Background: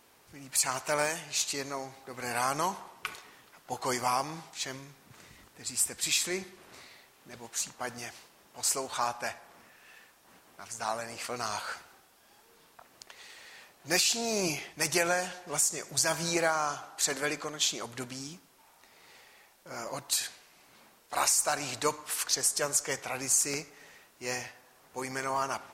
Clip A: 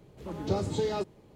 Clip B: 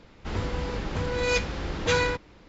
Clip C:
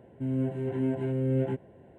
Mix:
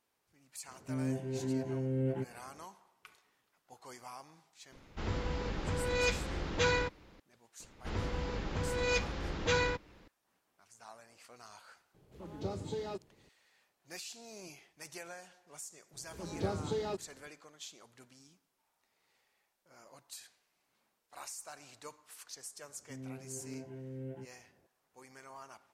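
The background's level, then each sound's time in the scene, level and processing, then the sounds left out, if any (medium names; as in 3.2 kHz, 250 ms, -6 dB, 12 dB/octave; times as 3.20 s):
background -19.5 dB
0.68 s: add C -6 dB
4.72 s: add B -6 dB
7.60 s: add B -6.5 dB
11.94 s: add A -9.5 dB
15.93 s: add A -6 dB
22.69 s: add C -16.5 dB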